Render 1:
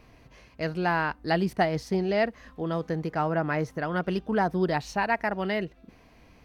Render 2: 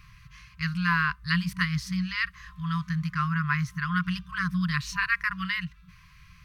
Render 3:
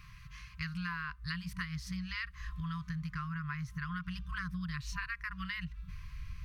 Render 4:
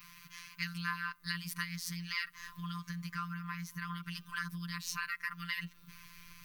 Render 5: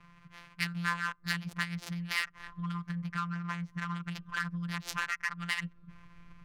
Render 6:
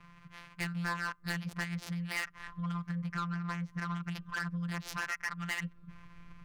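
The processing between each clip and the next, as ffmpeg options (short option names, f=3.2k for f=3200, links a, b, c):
-af "afftfilt=real='re*(1-between(b*sr/4096,190,1000))':imag='im*(1-between(b*sr/4096,190,1000))':win_size=4096:overlap=0.75,volume=4.5dB"
-af "asubboost=boost=7:cutoff=95,acompressor=threshold=-34dB:ratio=10,volume=-1.5dB"
-af "afftfilt=real='hypot(re,im)*cos(PI*b)':imag='0':win_size=1024:overlap=0.75,aemphasis=mode=production:type=bsi,volume=4dB"
-af "adynamicsmooth=sensitivity=7:basefreq=870,volume=5.5dB"
-af "asoftclip=type=tanh:threshold=-29.5dB,volume=1.5dB"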